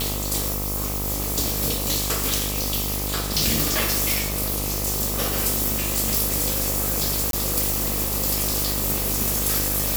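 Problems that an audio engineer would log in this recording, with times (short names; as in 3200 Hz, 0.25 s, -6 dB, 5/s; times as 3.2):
buzz 50 Hz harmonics 26 -29 dBFS
7.31–7.33 gap 22 ms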